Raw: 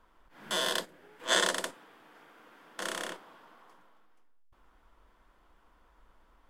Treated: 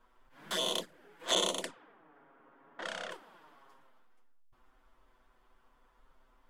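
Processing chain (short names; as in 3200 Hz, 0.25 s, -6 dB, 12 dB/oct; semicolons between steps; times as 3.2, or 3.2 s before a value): envelope flanger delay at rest 8.6 ms, full sweep at -27 dBFS; 1.35–3.11 low-pass opened by the level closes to 1200 Hz, open at -30.5 dBFS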